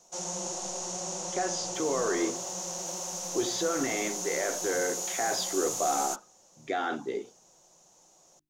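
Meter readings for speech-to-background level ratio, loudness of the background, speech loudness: 1.0 dB, -33.0 LUFS, -32.0 LUFS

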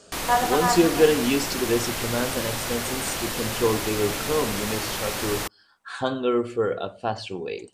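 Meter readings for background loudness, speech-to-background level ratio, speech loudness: -28.0 LUFS, 2.5 dB, -25.5 LUFS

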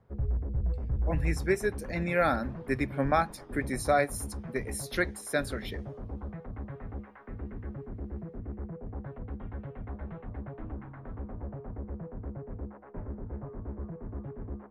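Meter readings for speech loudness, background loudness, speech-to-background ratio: -31.0 LUFS, -39.5 LUFS, 8.5 dB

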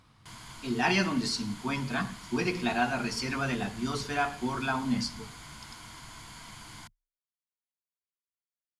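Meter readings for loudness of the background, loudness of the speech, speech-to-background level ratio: -46.0 LUFS, -30.5 LUFS, 15.5 dB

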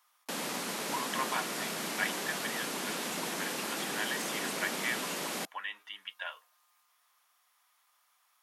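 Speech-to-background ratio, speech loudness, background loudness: -4.0 dB, -39.0 LUFS, -35.0 LUFS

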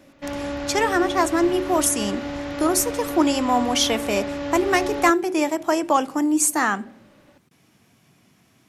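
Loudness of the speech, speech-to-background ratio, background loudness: -21.5 LUFS, 8.0 dB, -29.5 LUFS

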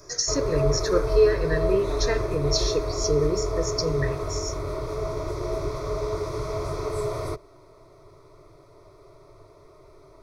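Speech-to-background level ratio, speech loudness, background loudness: 2.5 dB, -26.0 LUFS, -28.5 LUFS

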